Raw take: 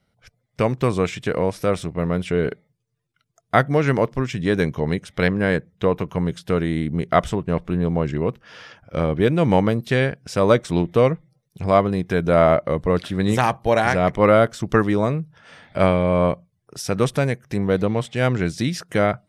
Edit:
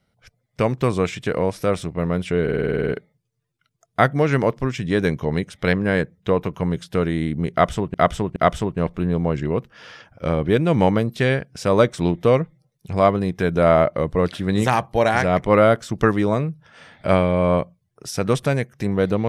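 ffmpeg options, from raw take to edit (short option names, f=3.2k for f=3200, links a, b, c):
-filter_complex "[0:a]asplit=12[a][b][c][d][e][f][g][h][i][j][k][l];[a]atrim=end=2.482[m];[b]atrim=start=2.428:end=2.482[n];[c]atrim=start=2.428:end=2.482[o];[d]atrim=start=2.428:end=2.482[p];[e]atrim=start=2.428:end=2.482[q];[f]atrim=start=2.428:end=2.482[r];[g]atrim=start=2.428:end=2.482[s];[h]atrim=start=2.428:end=2.482[t];[i]atrim=start=2.428:end=2.482[u];[j]atrim=start=2.428:end=7.492[v];[k]atrim=start=7.068:end=7.492[w];[l]atrim=start=7.068[x];[m][n]acrossfade=d=0.004:c1=hsin:c2=hsin[y];[y][o]acrossfade=d=0.004:c1=hsin:c2=hsin[z];[z][p]acrossfade=d=0.004:c1=hsin:c2=hsin[aa];[aa][q]acrossfade=d=0.004:c1=hsin:c2=hsin[ab];[ab][r]acrossfade=d=0.004:c1=hsin:c2=hsin[ac];[ac][s]acrossfade=d=0.004:c1=hsin:c2=hsin[ad];[ad][t]acrossfade=d=0.004:c1=hsin:c2=hsin[ae];[ae][u]acrossfade=d=0.004:c1=hsin:c2=hsin[af];[af][v]acrossfade=d=0.004:c1=hsin:c2=hsin[ag];[ag][w]acrossfade=d=0.004:c1=hsin:c2=hsin[ah];[ah][x]acrossfade=d=0.004:c1=hsin:c2=hsin"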